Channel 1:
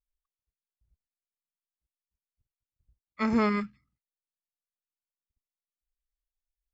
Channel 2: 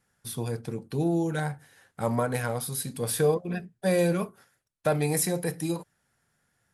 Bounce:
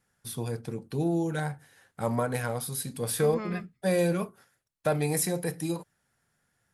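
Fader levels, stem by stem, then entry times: −12.0, −1.5 decibels; 0.00, 0.00 seconds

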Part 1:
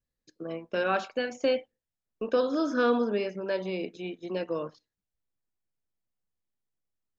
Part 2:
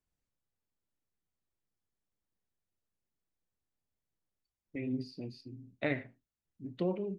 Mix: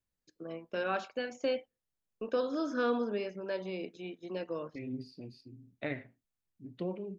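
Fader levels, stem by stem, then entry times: −6.0, −4.0 decibels; 0.00, 0.00 seconds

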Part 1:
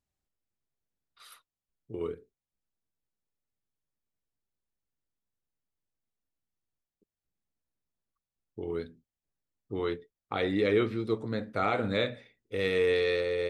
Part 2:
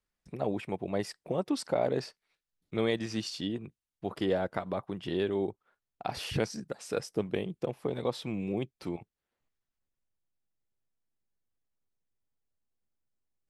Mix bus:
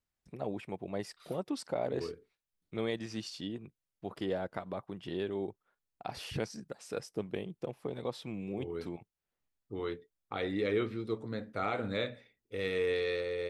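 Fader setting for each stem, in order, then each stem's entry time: −5.5, −5.5 decibels; 0.00, 0.00 seconds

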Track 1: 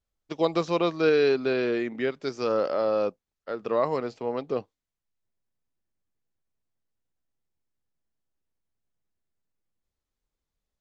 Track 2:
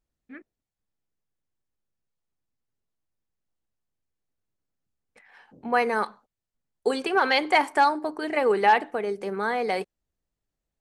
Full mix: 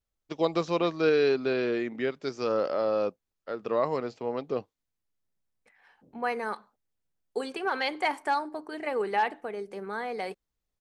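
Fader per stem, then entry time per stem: −2.0, −7.5 decibels; 0.00, 0.50 seconds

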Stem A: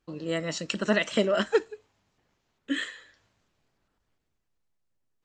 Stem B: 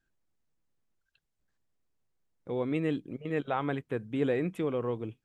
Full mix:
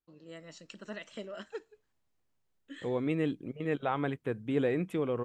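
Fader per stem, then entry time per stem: −18.0, −0.5 decibels; 0.00, 0.35 seconds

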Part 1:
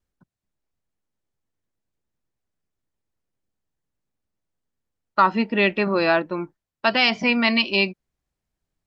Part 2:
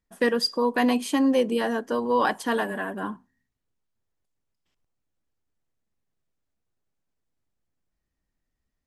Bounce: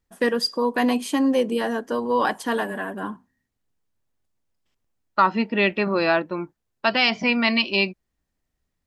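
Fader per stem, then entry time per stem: −1.0, +1.0 decibels; 0.00, 0.00 seconds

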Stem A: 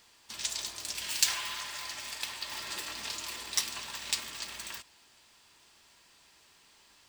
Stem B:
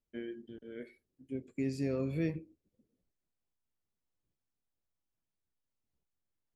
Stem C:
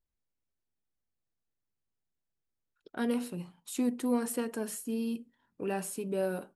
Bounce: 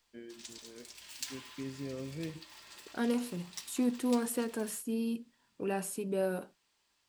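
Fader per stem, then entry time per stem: −14.5, −7.0, −0.5 decibels; 0.00, 0.00, 0.00 seconds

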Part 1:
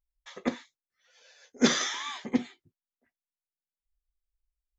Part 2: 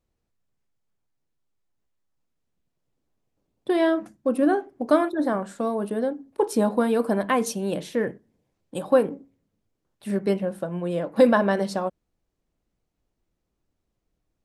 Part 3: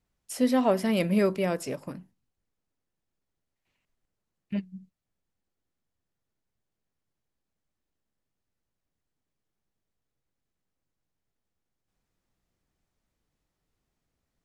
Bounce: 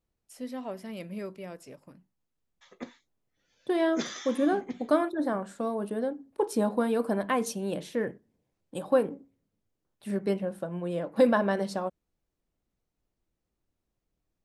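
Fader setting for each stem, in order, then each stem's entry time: −11.0, −5.0, −14.0 decibels; 2.35, 0.00, 0.00 seconds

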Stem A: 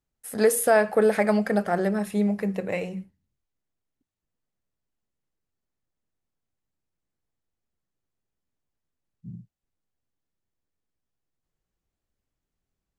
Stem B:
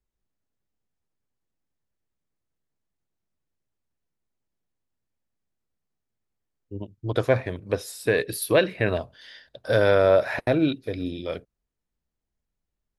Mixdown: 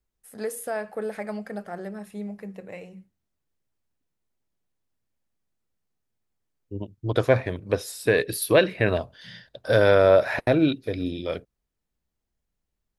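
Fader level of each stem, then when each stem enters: −11.0, +1.5 decibels; 0.00, 0.00 seconds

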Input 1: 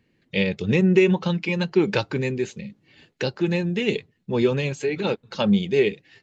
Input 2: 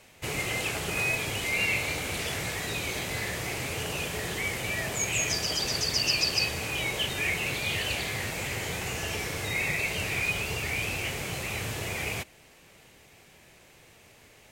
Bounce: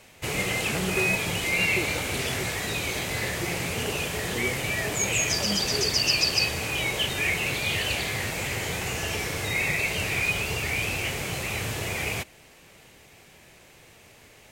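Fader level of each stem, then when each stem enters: −13.5, +3.0 decibels; 0.00, 0.00 seconds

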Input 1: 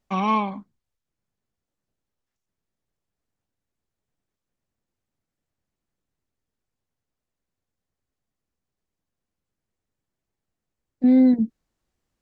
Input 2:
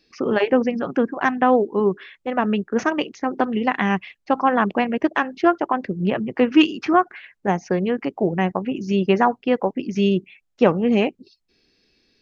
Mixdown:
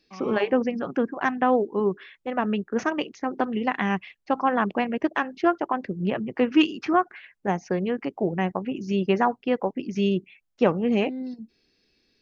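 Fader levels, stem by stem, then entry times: −18.0, −4.5 decibels; 0.00, 0.00 seconds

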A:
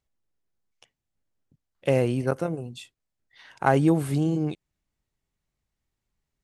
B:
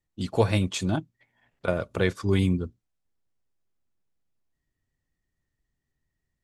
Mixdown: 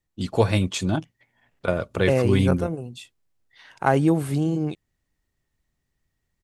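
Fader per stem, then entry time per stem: +1.0, +2.5 decibels; 0.20, 0.00 seconds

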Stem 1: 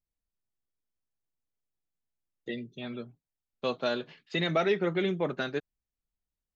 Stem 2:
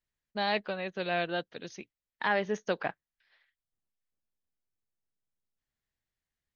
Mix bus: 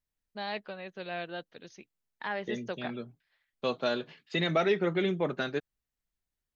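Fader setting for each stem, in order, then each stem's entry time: 0.0, −6.5 decibels; 0.00, 0.00 seconds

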